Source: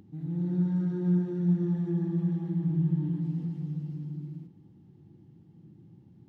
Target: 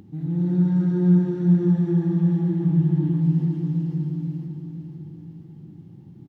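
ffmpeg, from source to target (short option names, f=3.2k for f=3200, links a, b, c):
-af "aecho=1:1:502|1004|1506|2008|2510|3012:0.422|0.211|0.105|0.0527|0.0264|0.0132,volume=7.5dB"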